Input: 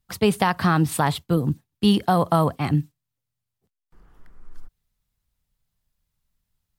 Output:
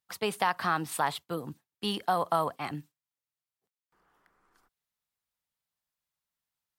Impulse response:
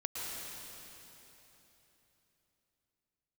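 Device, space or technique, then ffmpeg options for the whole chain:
filter by subtraction: -filter_complex "[0:a]asplit=2[a][b];[b]lowpass=950,volume=-1[c];[a][c]amix=inputs=2:normalize=0,volume=-7dB"

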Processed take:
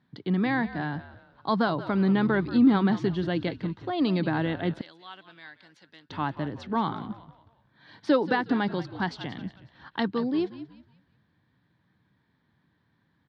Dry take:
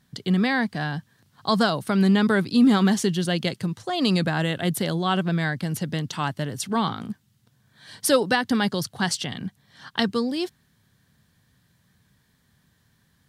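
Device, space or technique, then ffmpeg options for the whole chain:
frequency-shifting delay pedal into a guitar cabinet: -filter_complex "[0:a]asplit=5[a][b][c][d][e];[b]adelay=182,afreqshift=-59,volume=-14dB[f];[c]adelay=364,afreqshift=-118,volume=-22.4dB[g];[d]adelay=546,afreqshift=-177,volume=-30.8dB[h];[e]adelay=728,afreqshift=-236,volume=-39.2dB[i];[a][f][g][h][i]amix=inputs=5:normalize=0,highpass=90,equalizer=f=310:t=q:w=4:g=9,equalizer=f=910:t=q:w=4:g=5,equalizer=f=2.9k:t=q:w=4:g=-6,lowpass=f=3.6k:w=0.5412,lowpass=f=3.6k:w=1.3066,asettb=1/sr,asplit=3[j][k][l];[j]atrim=end=4.814[m];[k]atrim=start=4.81:end=6.1,asetpts=PTS-STARTPTS,afade=t=in:d=0.004:c=qsin,afade=t=out:st=1.286:d=0.004:c=qsin,aderivative[n];[l]atrim=start=6.096[o];[m][n]acrossfade=d=0.004:c1=hsin:c2=qsin[p];[p][o]acrossfade=d=0.004:c1=qsin:c2=hsin,volume=-5dB"

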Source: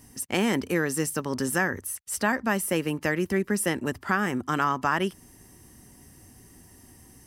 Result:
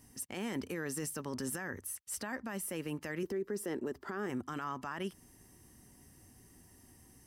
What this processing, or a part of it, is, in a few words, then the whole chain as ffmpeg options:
stacked limiters: -filter_complex "[0:a]asettb=1/sr,asplit=3[a][b][c];[a]atrim=end=3.234[d];[b]atrim=start=3.23:end=4.3,asetpts=PTS-STARTPTS,afade=t=in:d=0.004:c=qsin,afade=t=out:st=1.066:d=0.004:c=qsin,equalizer=f=100:t=o:w=0.67:g=-10,equalizer=f=400:t=o:w=0.67:g=11,equalizer=f=2.5k:t=o:w=0.67:g=-5,equalizer=f=10k:t=o:w=0.67:g=-7[e];[c]atrim=start=4.296[f];[d][e]acrossfade=d=0.004:c1=hsin:c2=qsin[g];[g][f]acrossfade=d=0.004:c1=qsin:c2=hsin,alimiter=limit=-14.5dB:level=0:latency=1:release=240,alimiter=limit=-21dB:level=0:latency=1:release=10,volume=-8dB"

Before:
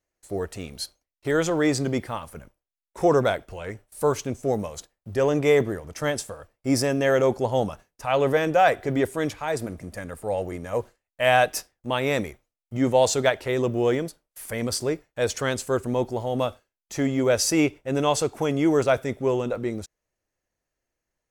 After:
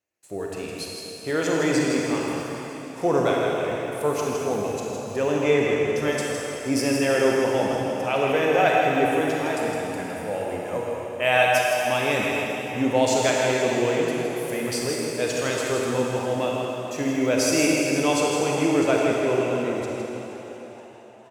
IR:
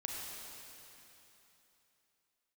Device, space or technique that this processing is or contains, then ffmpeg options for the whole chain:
PA in a hall: -filter_complex "[0:a]asettb=1/sr,asplit=3[a][b][c];[a]atrim=end=5.414[d];[b]atrim=start=5.41:end=5.87,asetpts=PTS-STARTPTS,afade=t=in:d=0.004:c=qsin,afade=t=out:st=0.456:d=0.004:c=qsin,lowpass=7.2k[e];[c]atrim=start=5.866[f];[d][e]acrossfade=d=0.004:c1=hsin:c2=qsin[g];[g][f]acrossfade=d=0.004:c1=qsin:c2=hsin,highpass=120,equalizer=f=2.6k:t=o:w=0.24:g=8,aecho=1:1:161:0.447[h];[1:a]atrim=start_sample=2205[i];[h][i]afir=irnorm=-1:irlink=0,asplit=6[j][k][l][m][n][o];[k]adelay=473,afreqshift=66,volume=-19dB[p];[l]adelay=946,afreqshift=132,volume=-23.4dB[q];[m]adelay=1419,afreqshift=198,volume=-27.9dB[r];[n]adelay=1892,afreqshift=264,volume=-32.3dB[s];[o]adelay=2365,afreqshift=330,volume=-36.7dB[t];[j][p][q][r][s][t]amix=inputs=6:normalize=0"

